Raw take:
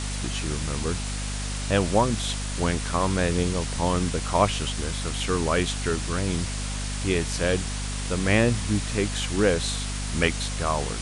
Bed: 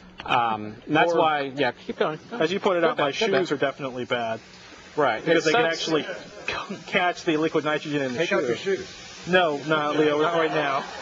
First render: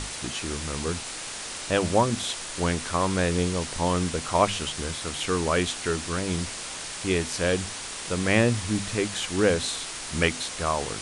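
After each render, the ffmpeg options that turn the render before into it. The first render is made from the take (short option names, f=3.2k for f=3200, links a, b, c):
-af "bandreject=f=50:t=h:w=6,bandreject=f=100:t=h:w=6,bandreject=f=150:t=h:w=6,bandreject=f=200:t=h:w=6,bandreject=f=250:t=h:w=6"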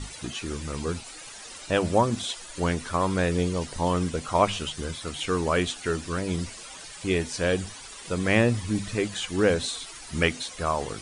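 -af "afftdn=nr=13:nf=-36"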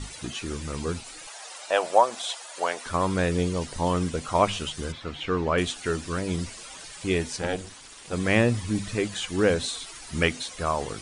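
-filter_complex "[0:a]asettb=1/sr,asplit=3[a][b][c];[a]atrim=end=1.274[d];[b]atrim=start=1.27:end=2.86,asetpts=PTS-STARTPTS,afade=t=in:d=0.004:c=qsin,afade=t=out:st=1.586:d=0.004:c=qsin,highpass=f=680:t=q:w=2.1[e];[c]atrim=start=2.856[f];[d][e]acrossfade=d=0.004:c1=hsin:c2=qsin[g];[g][f]acrossfade=d=0.004:c1=qsin:c2=hsin,asettb=1/sr,asplit=3[h][i][j];[h]atrim=end=4.924[k];[i]atrim=start=4.92:end=5.58,asetpts=PTS-STARTPTS,afade=t=in:d=0.004:c=qsin,afade=t=out:st=0.656:d=0.004:c=qsin,lowpass=3.2k[l];[j]atrim=start=5.576[m];[k][l]acrossfade=d=0.004:c1=hsin:c2=qsin[n];[n][m]acrossfade=d=0.004:c1=qsin:c2=hsin,asplit=3[o][p][q];[o]afade=t=out:st=7.36:d=0.02[r];[p]tremolo=f=280:d=0.889,afade=t=in:st=7.36:d=0.02,afade=t=out:st=8.12:d=0.02[s];[q]afade=t=in:st=8.12:d=0.02[t];[r][s][t]amix=inputs=3:normalize=0"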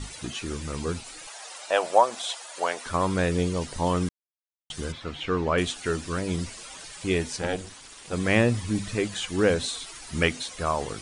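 -filter_complex "[0:a]asplit=3[a][b][c];[a]atrim=end=4.09,asetpts=PTS-STARTPTS,afade=t=out:st=4.086:d=0.004:c=hsin[d];[b]atrim=start=4.09:end=4.7,asetpts=PTS-STARTPTS,volume=0[e];[c]atrim=start=4.7,asetpts=PTS-STARTPTS,afade=t=in:d=0.004:c=hsin[f];[d][e][f]concat=n=3:v=0:a=1"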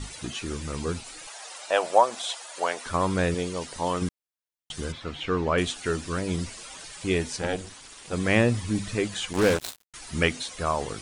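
-filter_complex "[0:a]asettb=1/sr,asplit=3[a][b][c];[a]atrim=end=3.344[d];[b]atrim=start=3.34:end=4.02,asetpts=PTS-STARTPTS,afade=t=in:d=0.004:c=qsin,afade=t=out:st=0.676:d=0.004:c=qsin,lowshelf=f=210:g=-11.5[e];[c]atrim=start=4.016[f];[d][e]acrossfade=d=0.004:c1=hsin:c2=qsin[g];[g][f]acrossfade=d=0.004:c1=qsin:c2=hsin,asettb=1/sr,asplit=3[h][i][j];[h]atrim=end=9.334[k];[i]atrim=start=9.33:end=9.94,asetpts=PTS-STARTPTS,afade=t=in:d=0.004:c=qsin,afade=t=out:st=0.606:d=0.004:c=qsin,acrusher=bits=3:mix=0:aa=0.5[l];[j]atrim=start=9.936[m];[k][l]acrossfade=d=0.004:c1=hsin:c2=qsin[n];[n][m]acrossfade=d=0.004:c1=qsin:c2=hsin"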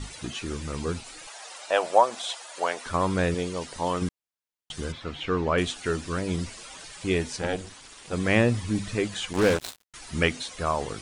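-af "highshelf=f=7.9k:g=-4.5"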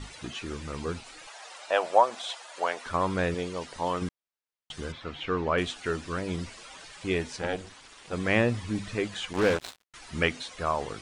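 -af "lowpass=f=3.6k:p=1,lowshelf=f=440:g=-5"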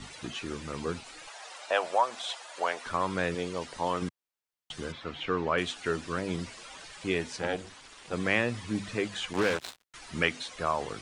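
-filter_complex "[0:a]acrossover=split=100|960[a][b][c];[a]acompressor=threshold=-54dB:ratio=6[d];[b]alimiter=limit=-20.5dB:level=0:latency=1:release=289[e];[d][e][c]amix=inputs=3:normalize=0"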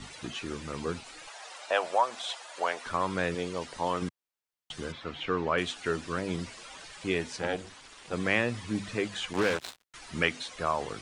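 -af anull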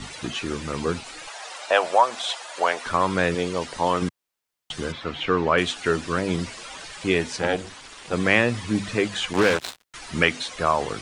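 -af "volume=8dB,alimiter=limit=-2dB:level=0:latency=1"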